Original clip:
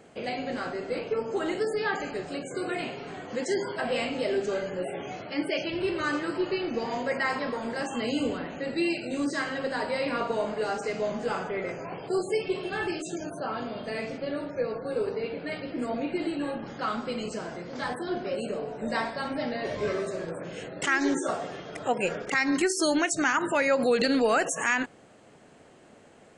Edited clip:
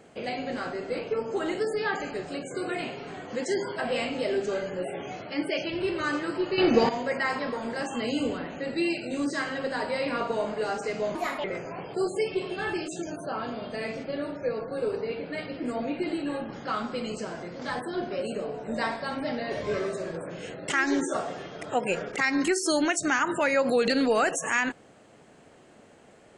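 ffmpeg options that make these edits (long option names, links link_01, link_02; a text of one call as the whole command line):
ffmpeg -i in.wav -filter_complex "[0:a]asplit=5[link_01][link_02][link_03][link_04][link_05];[link_01]atrim=end=6.582[link_06];[link_02]atrim=start=6.578:end=6.892,asetpts=PTS-STARTPTS,volume=10dB[link_07];[link_03]atrim=start=6.888:end=11.154[link_08];[link_04]atrim=start=11.15:end=11.58,asetpts=PTS-STARTPTS,asetrate=64827,aresample=44100[link_09];[link_05]atrim=start=11.576[link_10];[link_06][link_07]acrossfade=duration=0.004:curve1=hsin:curve2=hsin[link_11];[link_11][link_08]acrossfade=duration=0.004:curve1=hsin:curve2=hsin[link_12];[link_12][link_09]acrossfade=duration=0.004:curve1=hsin:curve2=hsin[link_13];[link_13][link_10]acrossfade=duration=0.004:curve1=hsin:curve2=hsin" out.wav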